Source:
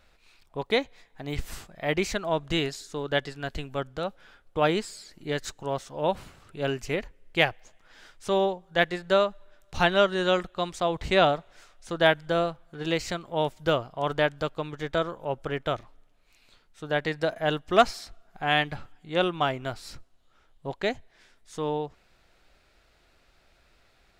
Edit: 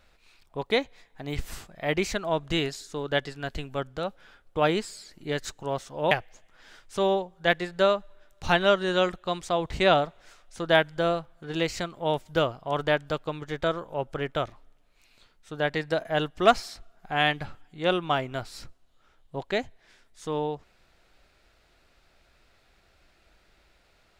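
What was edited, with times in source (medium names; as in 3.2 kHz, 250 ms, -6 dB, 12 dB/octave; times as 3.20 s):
6.11–7.42 s: delete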